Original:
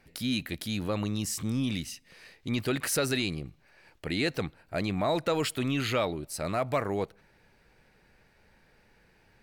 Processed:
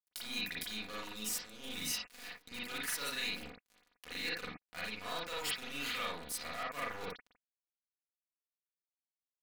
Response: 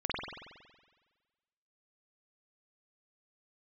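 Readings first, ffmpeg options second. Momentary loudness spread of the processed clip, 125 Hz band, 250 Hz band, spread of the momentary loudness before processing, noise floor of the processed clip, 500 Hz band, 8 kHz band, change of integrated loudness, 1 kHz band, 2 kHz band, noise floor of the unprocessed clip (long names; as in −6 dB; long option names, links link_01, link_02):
10 LU, −23.0 dB, −18.0 dB, 9 LU, below −85 dBFS, −16.0 dB, −4.5 dB, −8.5 dB, −8.5 dB, −4.0 dB, −64 dBFS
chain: -filter_complex "[0:a]aeval=exprs='if(lt(val(0),0),0.447*val(0),val(0))':channel_layout=same,equalizer=frequency=160:width_type=o:width=0.67:gain=7,equalizer=frequency=630:width_type=o:width=0.67:gain=-3,equalizer=frequency=16000:width_type=o:width=0.67:gain=7,areverse,acompressor=threshold=-40dB:ratio=20,areverse,highpass=frequency=42:width=0.5412,highpass=frequency=42:width=1.3066,tiltshelf=frequency=770:gain=-9,aecho=1:1:472:0.112,acrusher=bits=6:mix=0:aa=0.5,aecho=1:1:4.1:0.66[link_01];[1:a]atrim=start_sample=2205,afade=type=out:start_time=0.15:duration=0.01,atrim=end_sample=7056,asetrate=48510,aresample=44100[link_02];[link_01][link_02]afir=irnorm=-1:irlink=0"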